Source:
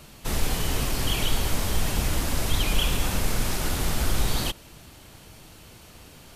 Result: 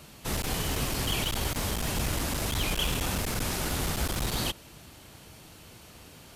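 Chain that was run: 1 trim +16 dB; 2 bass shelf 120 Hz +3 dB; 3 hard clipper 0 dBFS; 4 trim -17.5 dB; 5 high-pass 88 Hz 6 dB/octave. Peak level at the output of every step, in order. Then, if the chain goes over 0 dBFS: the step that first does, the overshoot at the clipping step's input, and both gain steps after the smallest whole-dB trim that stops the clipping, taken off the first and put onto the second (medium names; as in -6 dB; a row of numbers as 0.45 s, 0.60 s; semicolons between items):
+5.0 dBFS, +7.5 dBFS, 0.0 dBFS, -17.5 dBFS, -16.0 dBFS; step 1, 7.5 dB; step 1 +8 dB, step 4 -9.5 dB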